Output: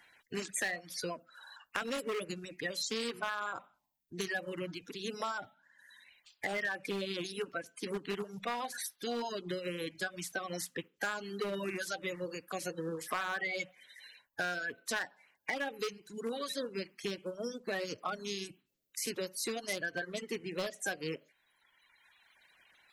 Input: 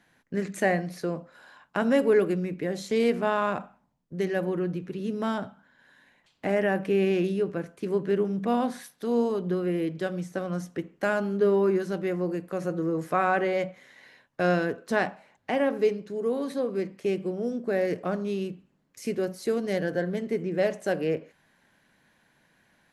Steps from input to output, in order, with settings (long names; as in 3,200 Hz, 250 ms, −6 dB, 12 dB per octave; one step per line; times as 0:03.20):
spectral magnitudes quantised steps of 30 dB
reverb reduction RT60 1.6 s
gain into a clipping stage and back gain 20 dB
tilt shelving filter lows −9.5 dB
downward compressor 5 to 1, threshold −33 dBFS, peak gain reduction 12 dB